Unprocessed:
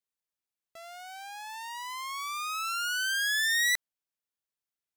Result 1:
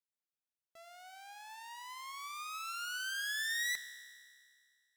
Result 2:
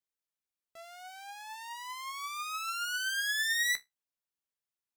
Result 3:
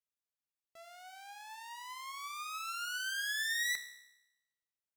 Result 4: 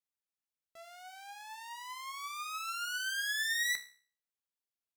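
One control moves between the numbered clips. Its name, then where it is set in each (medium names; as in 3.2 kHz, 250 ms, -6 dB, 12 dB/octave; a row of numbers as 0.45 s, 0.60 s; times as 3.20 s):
feedback comb, decay: 2.1 s, 0.16 s, 0.9 s, 0.43 s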